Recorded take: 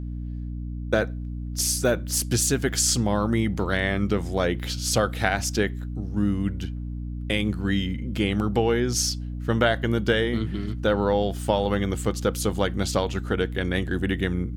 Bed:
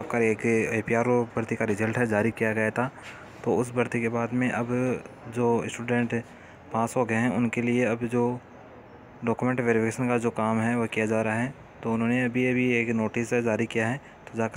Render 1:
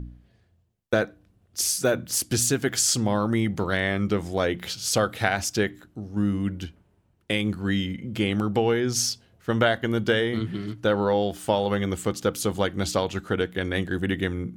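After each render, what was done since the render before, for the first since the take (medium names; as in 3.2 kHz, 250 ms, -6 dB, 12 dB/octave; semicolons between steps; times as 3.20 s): de-hum 60 Hz, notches 5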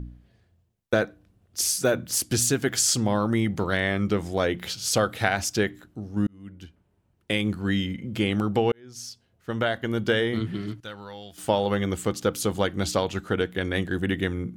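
6.27–7.36 s: fade in; 8.72–10.25 s: fade in; 10.80–11.38 s: amplifier tone stack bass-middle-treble 5-5-5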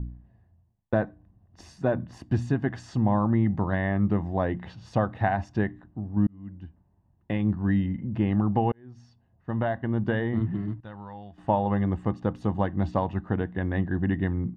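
low-pass 1.1 kHz 12 dB/octave; comb 1.1 ms, depth 59%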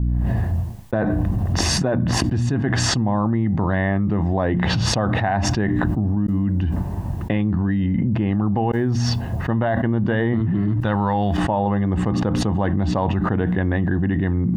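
level flattener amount 100%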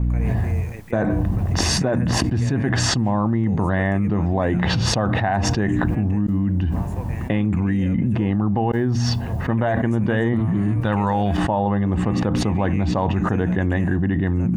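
add bed -13.5 dB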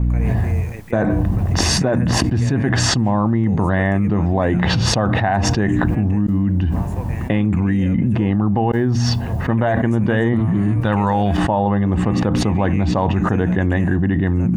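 trim +3 dB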